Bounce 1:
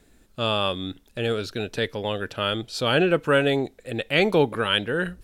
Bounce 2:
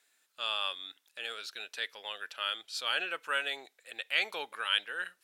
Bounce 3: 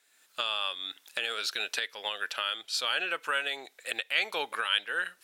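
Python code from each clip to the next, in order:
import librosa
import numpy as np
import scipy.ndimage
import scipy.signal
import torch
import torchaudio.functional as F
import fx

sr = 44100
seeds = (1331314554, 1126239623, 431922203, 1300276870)

y1 = scipy.signal.sosfilt(scipy.signal.butter(2, 1300.0, 'highpass', fs=sr, output='sos'), x)
y1 = y1 * 10.0 ** (-5.5 / 20.0)
y2 = fx.recorder_agc(y1, sr, target_db=-22.0, rise_db_per_s=33.0, max_gain_db=30)
y2 = y2 * 10.0 ** (1.5 / 20.0)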